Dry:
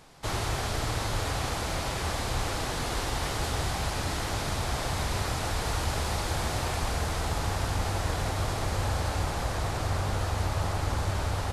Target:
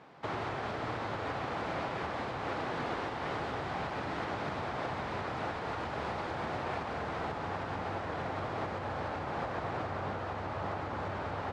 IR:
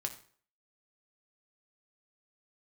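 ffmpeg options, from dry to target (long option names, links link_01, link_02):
-af "alimiter=limit=-23.5dB:level=0:latency=1:release=238,highpass=170,lowpass=2100,volume=1.5dB"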